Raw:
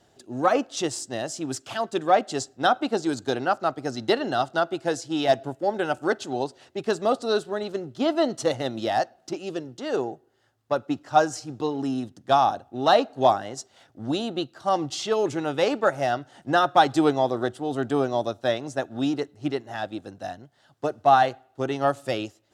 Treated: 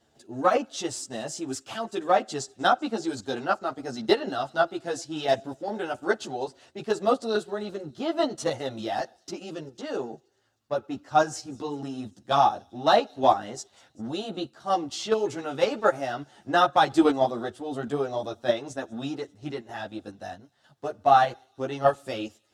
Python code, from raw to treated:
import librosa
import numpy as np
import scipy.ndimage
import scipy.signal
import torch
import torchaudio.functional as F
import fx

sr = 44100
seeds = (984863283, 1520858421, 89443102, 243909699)

p1 = fx.level_steps(x, sr, step_db=20)
p2 = x + (p1 * librosa.db_to_amplitude(3.0))
p3 = fx.echo_wet_highpass(p2, sr, ms=195, feedback_pct=62, hz=5500.0, wet_db=-21)
p4 = fx.ensemble(p3, sr)
y = p4 * librosa.db_to_amplitude(-3.5)